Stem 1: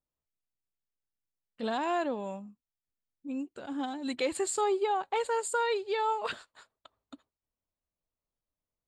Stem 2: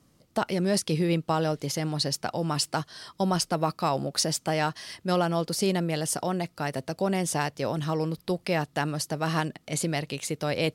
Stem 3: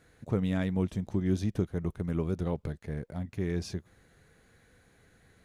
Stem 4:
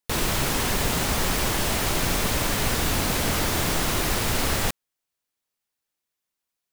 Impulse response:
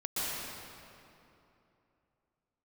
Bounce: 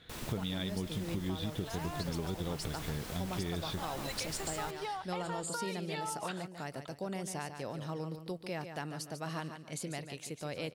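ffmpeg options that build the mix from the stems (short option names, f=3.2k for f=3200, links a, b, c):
-filter_complex "[0:a]highpass=750,acompressor=threshold=-37dB:ratio=6,volume=1dB[a];[1:a]volume=-11.5dB,asplit=2[b][c];[c]volume=-9.5dB[d];[2:a]lowpass=f=3.5k:t=q:w=11,volume=0.5dB[e];[3:a]volume=-19dB,asplit=2[f][g];[g]volume=-16dB[h];[d][h]amix=inputs=2:normalize=0,aecho=0:1:145|290|435|580:1|0.29|0.0841|0.0244[i];[a][b][e][f][i]amix=inputs=5:normalize=0,acompressor=threshold=-33dB:ratio=6"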